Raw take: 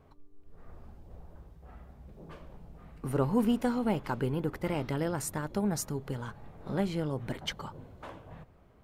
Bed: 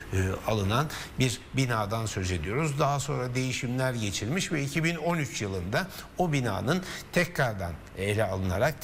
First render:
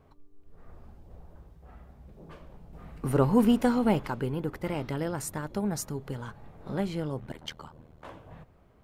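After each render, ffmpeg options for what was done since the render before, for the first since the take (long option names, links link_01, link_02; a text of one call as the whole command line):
ffmpeg -i in.wav -filter_complex "[0:a]asettb=1/sr,asplit=3[link_01][link_02][link_03];[link_01]atrim=end=7.204[link_04];[link_02]atrim=start=7.2:end=8.05,asetpts=PTS-STARTPTS,afade=type=in:duration=0.004:curve=qsin,afade=type=out:start_time=0.846:duration=0.004:curve=qsin,tremolo=f=78:d=0.947[link_05];[link_03]atrim=start=8.046[link_06];[link_04][link_05]acrossfade=duration=0.004:curve1=hsin:curve2=qsin[link_07];[link_07][link_06]acrossfade=duration=0.004:curve1=qsin:curve2=hsin,asplit=3[link_08][link_09][link_10];[link_08]atrim=end=2.732[link_11];[link_09]atrim=start=2.728:end=4.072,asetpts=PTS-STARTPTS,volume=5dB[link_12];[link_10]atrim=start=4.068[link_13];[link_11][link_12]acrossfade=duration=0.004:curve1=hsin:curve2=hsin[link_14];[link_14][link_13]acrossfade=duration=0.004:curve1=hsin:curve2=hsin" out.wav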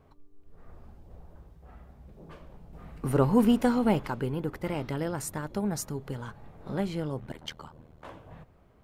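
ffmpeg -i in.wav -af anull out.wav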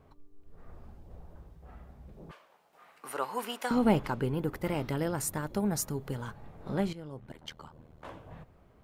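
ffmpeg -i in.wav -filter_complex "[0:a]asettb=1/sr,asplit=3[link_01][link_02][link_03];[link_01]atrim=end=2.314[link_04];[link_02]atrim=start=2.31:end=3.71,asetpts=PTS-STARTPTS,afade=type=in:duration=0.004:curve=qsin,afade=type=out:start_time=1.396:duration=0.004:curve=qsin,highpass=900[link_05];[link_03]atrim=start=3.706[link_06];[link_04][link_05]acrossfade=duration=0.004:curve1=hsin:curve2=qsin[link_07];[link_07][link_06]acrossfade=duration=0.004:curve1=qsin:curve2=hsin,asettb=1/sr,asplit=3[link_08][link_09][link_10];[link_08]atrim=end=4.374[link_11];[link_09]atrim=start=4.37:end=6.34,asetpts=PTS-STARTPTS,afade=type=in:duration=0.004:curve=qsin,afade=type=out:start_time=1.966:duration=0.004:curve=qsin,highshelf=frequency=11000:gain=8.5[link_12];[link_10]atrim=start=6.336[link_13];[link_11][link_12]acrossfade=duration=0.004:curve1=hsin:curve2=qsin[link_14];[link_14][link_13]acrossfade=duration=0.004:curve1=qsin:curve2=hsin,asplit=2[link_15][link_16];[link_15]atrim=end=6.93,asetpts=PTS-STARTPTS,afade=type=out:start_time=6.926:duration=0.004:curve=hsin:silence=0.199526[link_17];[link_16]atrim=start=6.93,asetpts=PTS-STARTPTS,afade=type=in:duration=1.19:silence=0.199526[link_18];[link_17][link_18]concat=n=2:v=0:a=1" out.wav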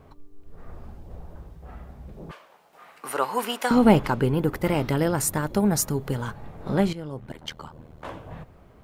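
ffmpeg -i in.wav -af "volume=8.5dB" out.wav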